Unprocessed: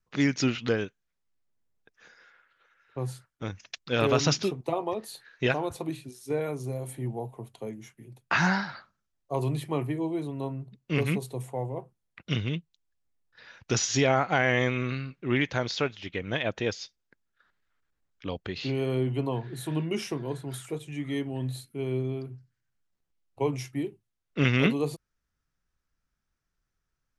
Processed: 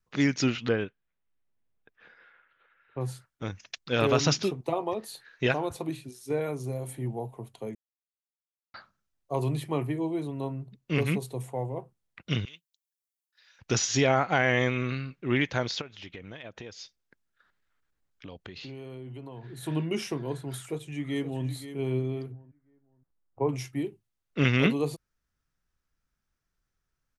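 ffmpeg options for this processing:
-filter_complex "[0:a]asettb=1/sr,asplit=3[a][b][c];[a]atrim=end=0.684[d];[b]atrim=start=0.68:end=3.01,asetpts=PTS-STARTPTS,afade=t=in:d=0.004:c=qsin,afade=t=out:st=2.326:d=0.004:c=qsin,lowpass=f=3.4k:w=0.5412,lowpass=f=3.4k:w=1.3066[e];[c]atrim=start=3.006[f];[d][e]acrossfade=d=0.004:c1=hsin:c2=qsin[g];[g][f]acrossfade=d=0.004:c1=qsin:c2=hsin,asettb=1/sr,asplit=3[h][i][j];[h]atrim=end=12.454[k];[i]atrim=start=12.45:end=13.59,asetpts=PTS-STARTPTS,afade=t=in:d=0.004:c=qsin,afade=t=out:st=1.136:d=0.004:c=qsin,aderivative[l];[j]atrim=start=13.586[m];[k][l]acrossfade=d=0.004:c1=hsin:c2=qsin[n];[n][m]acrossfade=d=0.004:c1=qsin:c2=hsin,asplit=3[o][p][q];[o]afade=t=out:st=15.8:d=0.02[r];[p]acompressor=threshold=-39dB:ratio=6:attack=3.2:release=140:knee=1:detection=peak,afade=t=in:st=15.8:d=0.02,afade=t=out:st=19.62:d=0.02[s];[q]afade=t=in:st=19.62:d=0.02[t];[r][s][t]amix=inputs=3:normalize=0,asplit=2[u][v];[v]afade=t=in:st=20.63:d=0.01,afade=t=out:st=21.47:d=0.01,aecho=0:1:520|1040|1560:0.266073|0.0665181|0.0166295[w];[u][w]amix=inputs=2:normalize=0,asettb=1/sr,asplit=3[x][y][z];[x]atrim=end=22.324[aa];[y]atrim=start=22.32:end=23.49,asetpts=PTS-STARTPTS,afade=t=in:d=0.004:c=qsin,afade=t=out:st=1.166:d=0.004:c=qsin,lowpass=f=1.6k:w=0.5412,lowpass=f=1.6k:w=1.3066[ab];[z]atrim=start=23.486[ac];[aa][ab]acrossfade=d=0.004:c1=hsin:c2=qsin[ad];[ad][ac]acrossfade=d=0.004:c1=qsin:c2=hsin,asplit=3[ae][af][ag];[ae]atrim=end=7.75,asetpts=PTS-STARTPTS,afade=t=out:st=7.746:d=0.004:c=hsin[ah];[af]atrim=start=7.75:end=8.74,asetpts=PTS-STARTPTS,volume=0[ai];[ag]atrim=start=8.74,asetpts=PTS-STARTPTS,afade=t=in:d=0.004:c=hsin[aj];[ah][ai][aj]concat=n=3:v=0:a=1"

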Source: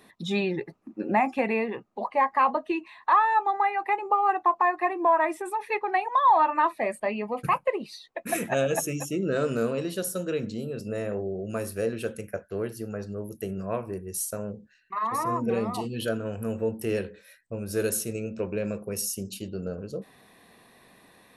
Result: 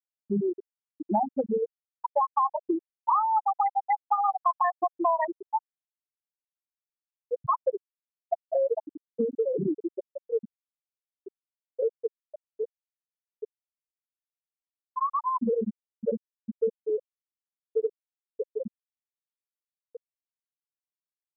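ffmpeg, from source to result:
-filter_complex "[0:a]asettb=1/sr,asplit=3[a][b][c];[a]atrim=end=5.664[d];[b]atrim=start=5.66:end=7.28,asetpts=PTS-STARTPTS,afade=t=in:d=0.004:c=qsin,afade=t=out:st=1.616:d=0.004:c=qsin,aderivative[e];[c]atrim=start=7.276[f];[d][e]acrossfade=d=0.004:c1=hsin:c2=qsin[g];[g][f]acrossfade=d=0.004:c1=qsin:c2=hsin,asplit=2[h][i];[i]afade=t=in:st=15.04:d=0.01,afade=t=out:st=15.83:d=0.01,aecho=0:1:570|1140|1710|2280|2850|3420|3990|4560|5130|5700:0.530884|0.345075|0.224299|0.145794|0.0947662|0.061598|0.0400387|0.0260252|0.0169164|0.0109956[j];[h][j]amix=inputs=2:normalize=0,asplit=3[k][l][m];[k]atrim=end=9.082[n];[l]atrim=start=9.078:end=9.782,asetpts=PTS-STARTPTS,areverse[o];[m]atrim=start=9.778[p];[n][o]acrossfade=d=0.004:c1=hsin:c2=hsin[q];[q][p]acrossfade=d=0.004:c1=hsin:c2=hsin,afftfilt=real='re*gte(hypot(re,im),0.398)':imag='im*gte(hypot(re,im),0.398)':win_size=1024:overlap=0.75,acompressor=threshold=-28dB:ratio=4,volume=5.5dB"

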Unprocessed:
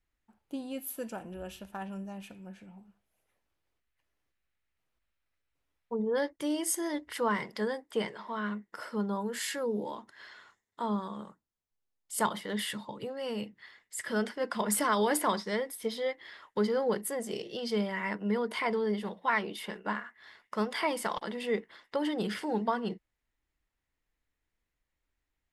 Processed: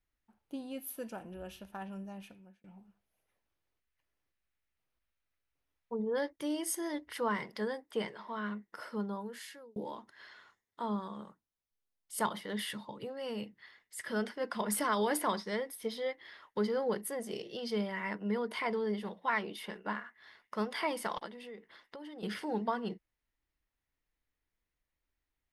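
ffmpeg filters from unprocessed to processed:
-filter_complex "[0:a]asettb=1/sr,asplit=3[a][b][c];[a]atrim=end=21.264[d];[b]atrim=start=21.26:end=22.23,asetpts=PTS-STARTPTS,afade=t=in:d=0.004:c=qsin,afade=t=out:st=0.966:d=0.004:c=qsin,acompressor=threshold=-43dB:ratio=4:attack=3.2:release=140:knee=1:detection=peak[e];[c]atrim=start=22.226[f];[d][e]acrossfade=d=0.004:c1=hsin:c2=qsin[g];[g][f]acrossfade=d=0.004:c1=qsin:c2=hsin,asplit=3[h][i][j];[h]atrim=end=2.64,asetpts=PTS-STARTPTS,afade=t=out:st=2.21:d=0.43[k];[i]atrim=start=2.64:end=9.76,asetpts=PTS-STARTPTS,afade=t=in:d=0.004:c=hsin,afade=t=out:st=6.3:d=0.82[l];[j]atrim=start=9.76,asetpts=PTS-STARTPTS,afade=t=in:d=0.004:c=hsin[m];[k][l][m]concat=n=3:v=0:a=1,equalizer=f=7.5k:w=7:g=-9.5,volume=-3.5dB"

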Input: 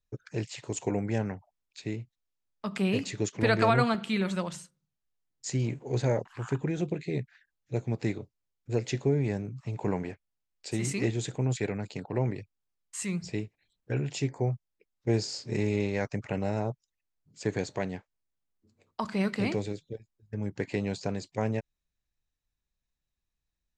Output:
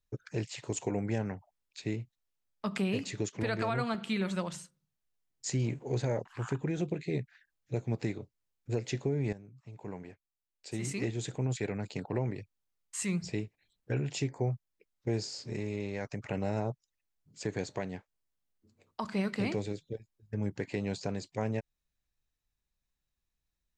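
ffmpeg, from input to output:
-filter_complex "[0:a]asettb=1/sr,asplit=3[a][b][c];[a]atrim=end=15.284[d];[b]atrim=start=15.28:end=16.25,asetpts=PTS-STARTPTS,afade=t=in:d=0.004:c=qsin,afade=t=out:st=0.966:d=0.004:c=qsin,acompressor=threshold=-37dB:ratio=2:attack=3.2:release=140:knee=1:detection=peak[e];[c]atrim=start=16.246[f];[d][e]acrossfade=d=0.004:c1=hsin:c2=qsin[g];[g][f]acrossfade=d=0.004:c1=qsin:c2=hsin,asplit=2[h][i];[h]atrim=end=9.33,asetpts=PTS-STARTPTS,afade=t=out:st=9.326:d=0.004:c=hsin:silence=0.188365[j];[i]atrim=start=9.33,asetpts=PTS-STARTPTS,afade=t=in:d=2.25:c=qua:silence=0.188365[k];[j][k]concat=n=2:v=0:a=1,alimiter=limit=-22dB:level=0:latency=1:release=344"

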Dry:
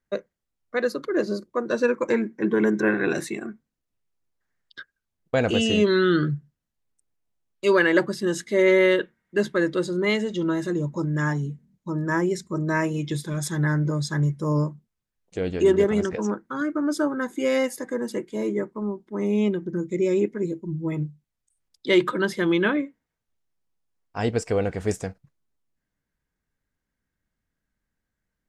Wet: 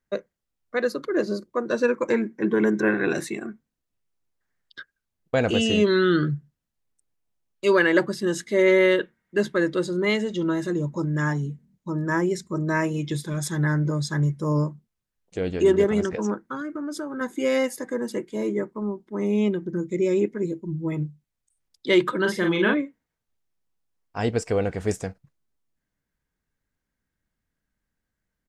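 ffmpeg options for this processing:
-filter_complex "[0:a]asettb=1/sr,asplit=3[a][b][c];[a]atrim=end=16.544[d];[b]atrim=start=16.54:end=17.21,asetpts=PTS-STARTPTS,afade=t=in:d=0.004:c=qsin,afade=t=out:st=0.666:d=0.004:c=qsin,acompressor=threshold=-28dB:ratio=6:attack=3.2:release=140:knee=1:detection=peak[e];[c]atrim=start=17.206[f];[d][e]acrossfade=d=0.004:c1=hsin:c2=qsin[g];[g][f]acrossfade=d=0.004:c1=qsin:c2=hsin,asplit=3[h][i][j];[h]afade=t=out:st=22.24:d=0.02[k];[i]asplit=2[l][m];[m]adelay=43,volume=-3.5dB[n];[l][n]amix=inputs=2:normalize=0,afade=t=in:st=22.24:d=0.02,afade=t=out:st=22.73:d=0.02[o];[j]afade=t=in:st=22.73:d=0.02[p];[k][o][p]amix=inputs=3:normalize=0"

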